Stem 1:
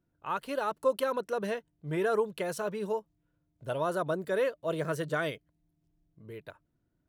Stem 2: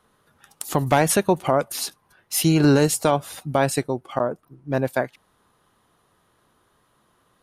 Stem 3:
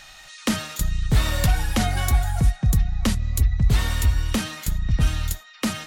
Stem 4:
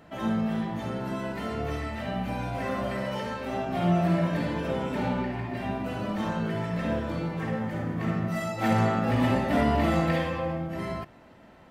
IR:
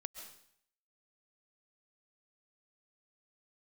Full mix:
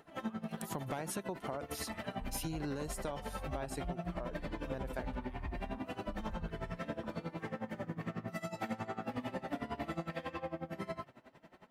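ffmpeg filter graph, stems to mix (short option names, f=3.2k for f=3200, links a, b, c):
-filter_complex "[0:a]highpass=1.1k,acompressor=threshold=-40dB:ratio=6,volume=-10.5dB[a];[1:a]volume=-13dB,asplit=2[b][c];[2:a]lowpass=f=1.1k:w=0.5412,lowpass=f=1.1k:w=1.3066,equalizer=f=140:w=0.81:g=-12.5,aecho=1:1:1:0.59,adelay=1400,volume=-19.5dB[d];[3:a]lowshelf=f=110:g=-9.5,flanger=delay=2.3:depth=6:regen=52:speed=0.67:shape=triangular,aeval=exprs='val(0)*pow(10,-19*(0.5-0.5*cos(2*PI*11*n/s))/20)':c=same,volume=3dB[e];[c]apad=whole_len=312241[f];[a][f]sidechaincompress=threshold=-42dB:ratio=8:attack=16:release=450[g];[g][b][d][e]amix=inputs=4:normalize=0,acompressor=threshold=-36dB:ratio=6"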